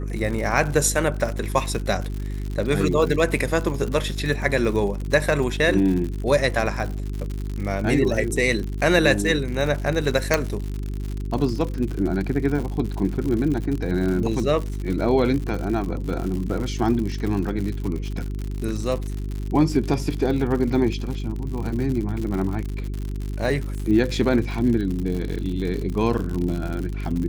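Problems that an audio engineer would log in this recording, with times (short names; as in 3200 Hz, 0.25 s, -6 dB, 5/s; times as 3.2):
crackle 100/s -28 dBFS
hum 50 Hz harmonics 8 -28 dBFS
10.34 pop -4 dBFS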